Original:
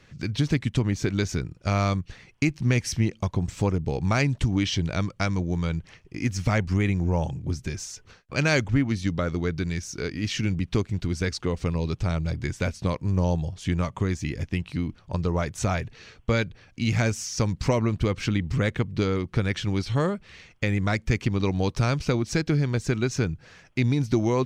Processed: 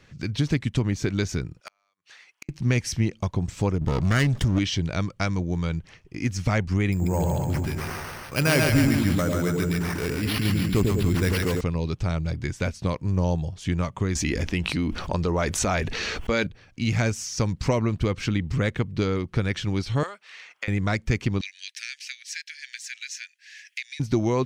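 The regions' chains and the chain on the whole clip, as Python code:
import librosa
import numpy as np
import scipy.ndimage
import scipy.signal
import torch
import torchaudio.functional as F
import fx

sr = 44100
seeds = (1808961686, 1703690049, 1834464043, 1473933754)

y = fx.chain(x, sr, fx.highpass(hz=1000.0, slope=12),
    fx.gate_flip(shuts_db=-21.0, range_db=-42),
    fx.overload_stage(gain_db=28.0), at=(1.6, 2.49))
y = fx.chain(y, sr, fx.lower_of_two(delay_ms=0.6),
    fx.env_flatten(amount_pct=50), at=(3.81, 4.59))
y = fx.chain(y, sr, fx.echo_split(split_hz=620.0, low_ms=98, high_ms=139, feedback_pct=52, wet_db=-3),
    fx.resample_bad(factor=6, down='none', up='hold'),
    fx.sustainer(db_per_s=23.0), at=(6.92, 11.61))
y = fx.chain(y, sr, fx.peak_eq(hz=120.0, db=-14.5, octaves=0.61),
    fx.env_flatten(amount_pct=70), at=(14.15, 16.47))
y = fx.chain(y, sr, fx.highpass(hz=990.0, slope=12),
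    fx.band_squash(depth_pct=70), at=(20.03, 20.68))
y = fx.chain(y, sr, fx.cheby1_highpass(hz=1700.0, order=6),
    fx.band_squash(depth_pct=70), at=(21.41, 24.0))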